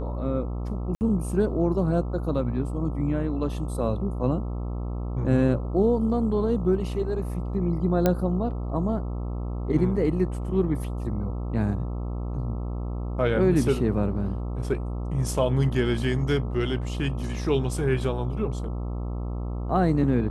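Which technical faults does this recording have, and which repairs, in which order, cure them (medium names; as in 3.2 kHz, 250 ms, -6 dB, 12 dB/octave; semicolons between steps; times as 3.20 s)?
buzz 60 Hz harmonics 22 -30 dBFS
0.95–1.01 s: dropout 59 ms
8.06 s: pop -8 dBFS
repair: de-click; de-hum 60 Hz, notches 22; interpolate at 0.95 s, 59 ms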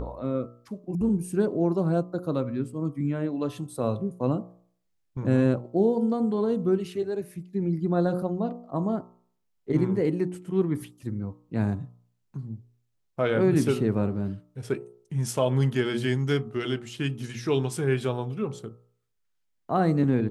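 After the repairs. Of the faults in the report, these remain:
nothing left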